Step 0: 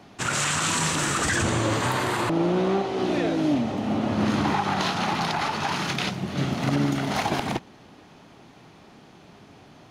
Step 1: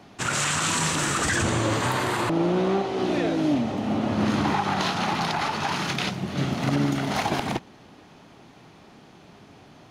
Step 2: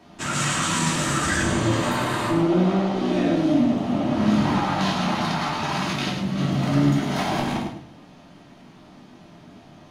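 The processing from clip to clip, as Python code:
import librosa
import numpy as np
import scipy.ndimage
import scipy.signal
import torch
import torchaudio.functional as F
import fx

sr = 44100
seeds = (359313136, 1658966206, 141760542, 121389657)

y1 = x
y2 = fx.echo_feedback(y1, sr, ms=104, feedback_pct=24, wet_db=-7)
y2 = fx.room_shoebox(y2, sr, seeds[0], volume_m3=310.0, walls='furnished', distance_m=2.8)
y2 = y2 * librosa.db_to_amplitude(-5.0)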